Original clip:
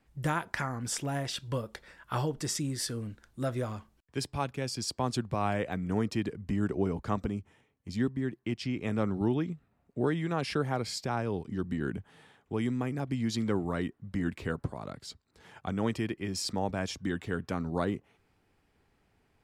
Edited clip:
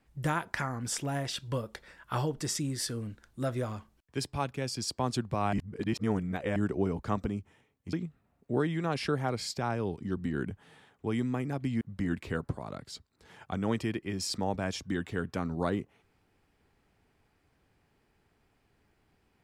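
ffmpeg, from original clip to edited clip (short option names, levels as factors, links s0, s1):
-filter_complex "[0:a]asplit=5[s0][s1][s2][s3][s4];[s0]atrim=end=5.532[s5];[s1]atrim=start=5.528:end=6.562,asetpts=PTS-STARTPTS,areverse[s6];[s2]atrim=start=6.558:end=7.932[s7];[s3]atrim=start=9.398:end=13.282[s8];[s4]atrim=start=13.958[s9];[s5][s6]acrossfade=d=0.004:c1=hsin:c2=hsin[s10];[s10][s7]acrossfade=d=0.004:c1=hsin:c2=hsin[s11];[s11][s8]acrossfade=d=0.004:c1=hsin:c2=hsin[s12];[s12][s9]acrossfade=d=0.004:c1=hsin:c2=hsin"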